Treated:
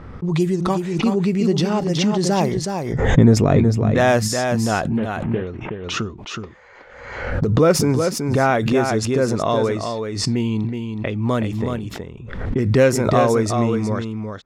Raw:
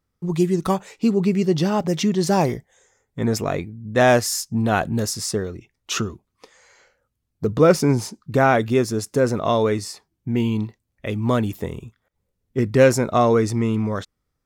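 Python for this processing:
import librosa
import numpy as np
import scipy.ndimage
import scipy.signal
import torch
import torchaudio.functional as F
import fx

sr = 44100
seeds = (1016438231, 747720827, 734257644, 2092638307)

y = fx.cvsd(x, sr, bps=16000, at=(4.97, 5.47))
y = fx.recorder_agc(y, sr, target_db=-13.5, rise_db_per_s=15.0, max_gain_db=30)
y = fx.env_lowpass(y, sr, base_hz=1800.0, full_db=-13.5)
y = fx.low_shelf(y, sr, hz=480.0, db=12.0, at=(2.56, 3.9), fade=0.02)
y = y + 10.0 ** (-6.0 / 20.0) * np.pad(y, (int(371 * sr / 1000.0), 0))[:len(y)]
y = fx.pre_swell(y, sr, db_per_s=51.0)
y = F.gain(torch.from_numpy(y), -1.0).numpy()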